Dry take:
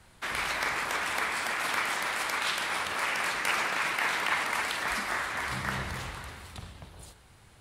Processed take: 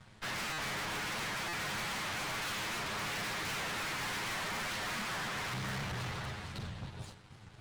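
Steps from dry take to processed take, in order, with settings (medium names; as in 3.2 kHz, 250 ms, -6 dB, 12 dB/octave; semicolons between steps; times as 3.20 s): comb filter that takes the minimum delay 9.6 ms; low-pass 5.9 kHz 12 dB/octave; peaking EQ 150 Hz +11 dB 0.63 oct; waveshaping leveller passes 1; hard clipper -36.5 dBFS, distortion -5 dB; buffer glitch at 0.53/1.48 s, samples 256, times 8; warped record 78 rpm, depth 160 cents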